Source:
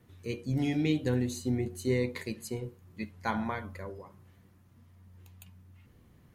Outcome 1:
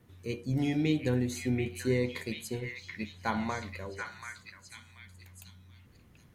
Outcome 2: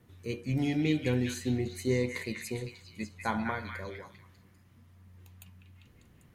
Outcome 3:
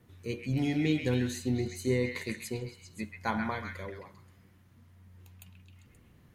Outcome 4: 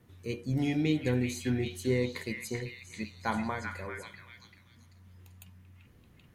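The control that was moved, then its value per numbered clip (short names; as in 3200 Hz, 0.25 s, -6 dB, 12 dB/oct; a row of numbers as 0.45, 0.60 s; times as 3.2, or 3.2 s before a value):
delay with a stepping band-pass, time: 0.733, 0.198, 0.132, 0.388 s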